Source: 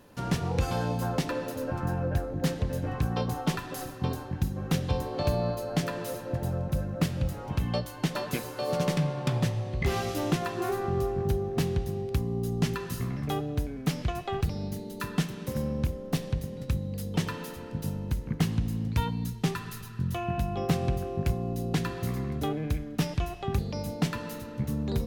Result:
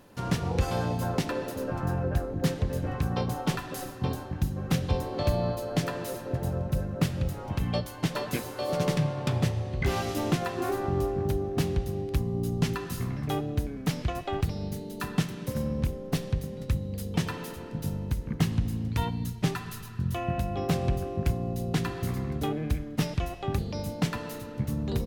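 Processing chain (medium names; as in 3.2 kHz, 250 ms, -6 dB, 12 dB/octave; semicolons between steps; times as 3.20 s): harmony voices -5 st -9 dB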